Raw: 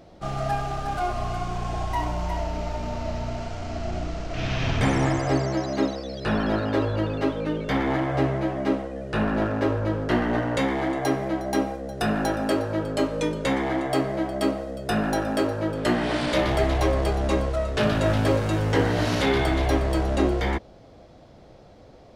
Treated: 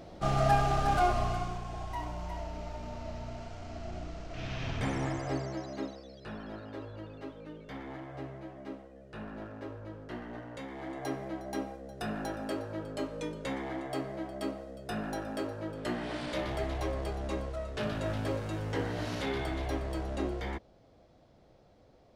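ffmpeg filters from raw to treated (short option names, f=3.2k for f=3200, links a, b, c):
-af "volume=8dB,afade=t=out:st=0.97:d=0.66:silence=0.251189,afade=t=out:st=5.34:d=1.03:silence=0.398107,afade=t=in:st=10.68:d=0.4:silence=0.446684"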